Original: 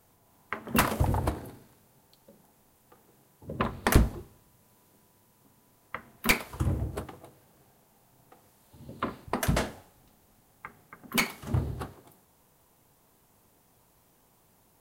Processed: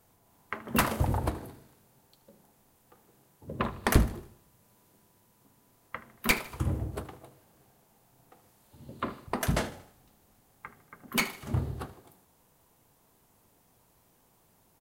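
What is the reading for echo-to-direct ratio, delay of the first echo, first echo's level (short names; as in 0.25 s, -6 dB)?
-16.5 dB, 77 ms, -17.5 dB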